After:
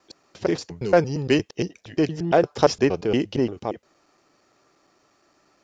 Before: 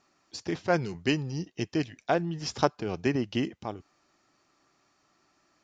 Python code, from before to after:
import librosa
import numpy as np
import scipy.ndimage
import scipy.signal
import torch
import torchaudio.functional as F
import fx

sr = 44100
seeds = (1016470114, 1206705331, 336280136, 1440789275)

p1 = fx.block_reorder(x, sr, ms=116.0, group=3)
p2 = fx.peak_eq(p1, sr, hz=480.0, db=8.0, octaves=0.84)
p3 = 10.0 ** (-18.5 / 20.0) * np.tanh(p2 / 10.0 ** (-18.5 / 20.0))
p4 = p2 + (p3 * librosa.db_to_amplitude(-8.5))
y = p4 * librosa.db_to_amplitude(2.0)